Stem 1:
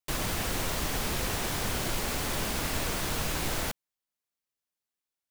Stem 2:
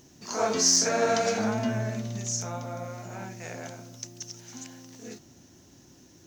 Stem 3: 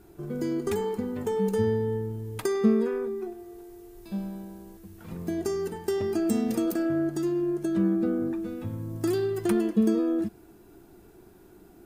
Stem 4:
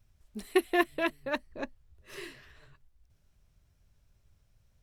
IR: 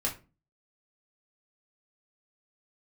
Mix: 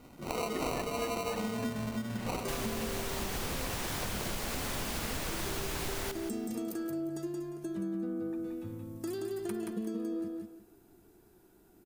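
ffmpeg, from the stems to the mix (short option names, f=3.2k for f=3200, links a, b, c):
-filter_complex "[0:a]adelay=2400,volume=0dB,asplit=2[a][b];[b]volume=-13dB[c];[1:a]aecho=1:1:4:0.46,acrusher=samples=26:mix=1:aa=0.000001,volume=0dB[d];[2:a]equalizer=f=12k:t=o:w=2.1:g=5,volume=-10.5dB,asplit=2[e][f];[f]volume=-4.5dB[g];[3:a]volume=-7dB[h];[c][g]amix=inputs=2:normalize=0,aecho=0:1:176|352|528|704:1|0.25|0.0625|0.0156[i];[a][d][e][h][i]amix=inputs=5:normalize=0,acompressor=threshold=-32dB:ratio=6"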